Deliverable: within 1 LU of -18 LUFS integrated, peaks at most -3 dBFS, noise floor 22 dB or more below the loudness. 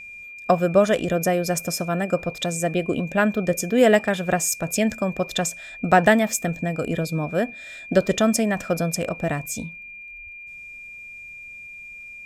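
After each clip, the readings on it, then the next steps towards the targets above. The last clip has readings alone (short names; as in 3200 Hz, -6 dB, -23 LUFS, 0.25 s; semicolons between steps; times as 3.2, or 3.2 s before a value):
ticks 46/s; steady tone 2400 Hz; tone level -37 dBFS; loudness -22.0 LUFS; peak -2.5 dBFS; loudness target -18.0 LUFS
-> de-click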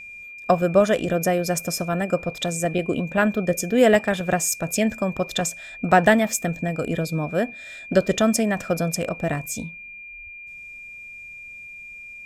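ticks 0.41/s; steady tone 2400 Hz; tone level -37 dBFS
-> notch 2400 Hz, Q 30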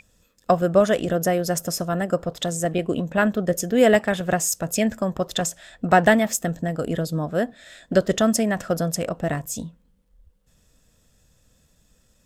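steady tone none; loudness -22.5 LUFS; peak -2.5 dBFS; loudness target -18.0 LUFS
-> gain +4.5 dB; limiter -3 dBFS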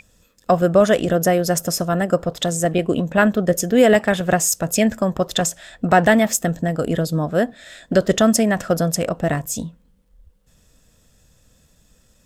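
loudness -18.5 LUFS; peak -3.0 dBFS; noise floor -58 dBFS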